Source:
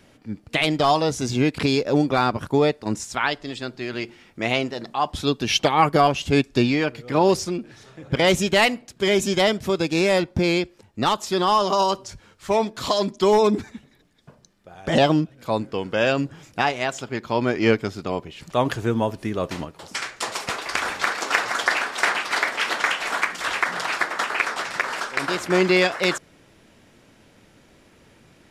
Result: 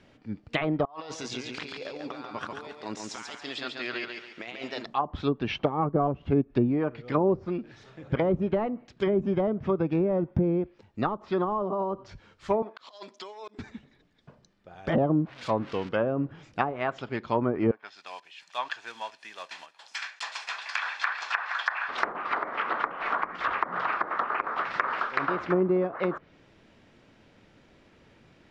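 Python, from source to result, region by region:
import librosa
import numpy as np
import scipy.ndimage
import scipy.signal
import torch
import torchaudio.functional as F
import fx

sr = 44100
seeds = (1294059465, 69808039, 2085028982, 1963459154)

y = fx.chain(x, sr, fx.highpass(hz=990.0, slope=6),
    fx.over_compress(threshold_db=-35.0, ratio=-1.0),
    fx.echo_feedback(ms=140, feedback_pct=36, wet_db=-4), at=(0.85, 4.86))
y = fx.chain(y, sr, fx.peak_eq(hz=140.0, db=4.5, octaves=0.72),
    fx.notch(hz=4100.0, q=8.9), at=(9.06, 10.63))
y = fx.chain(y, sr, fx.highpass(hz=640.0, slope=12),
    fx.over_compress(threshold_db=-28.0, ratio=-0.5),
    fx.auto_swell(attack_ms=759.0), at=(12.62, 13.59))
y = fx.chain(y, sr, fx.crossing_spikes(level_db=-17.0),
    fx.high_shelf(hz=5500.0, db=-8.5), at=(15.07, 15.89))
y = fx.chain(y, sr, fx.block_float(bits=5),
    fx.bessel_highpass(hz=1600.0, order=2),
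    fx.comb(ms=1.2, depth=0.37), at=(17.71, 21.89))
y = fx.dynamic_eq(y, sr, hz=1200.0, q=2.9, threshold_db=-39.0, ratio=4.0, max_db=8)
y = scipy.signal.sosfilt(scipy.signal.butter(2, 4500.0, 'lowpass', fs=sr, output='sos'), y)
y = fx.env_lowpass_down(y, sr, base_hz=510.0, full_db=-15.0)
y = F.gain(torch.from_numpy(y), -4.0).numpy()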